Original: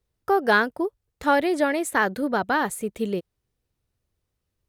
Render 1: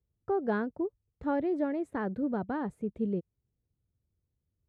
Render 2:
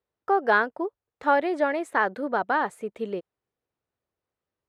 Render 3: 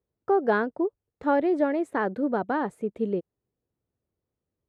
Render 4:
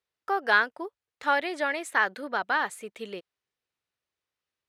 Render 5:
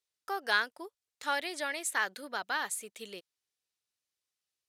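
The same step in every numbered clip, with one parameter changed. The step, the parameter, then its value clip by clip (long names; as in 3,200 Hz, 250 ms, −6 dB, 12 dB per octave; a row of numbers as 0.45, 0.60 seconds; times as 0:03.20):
resonant band-pass, frequency: 110, 860, 340, 2,200, 5,700 Hertz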